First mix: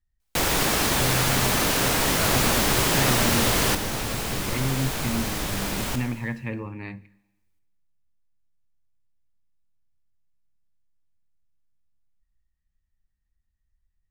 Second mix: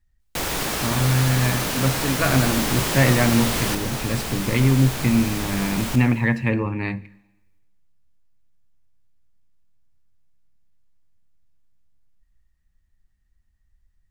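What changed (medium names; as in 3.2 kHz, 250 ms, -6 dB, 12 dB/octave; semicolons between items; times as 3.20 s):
speech +10.0 dB; first sound -3.0 dB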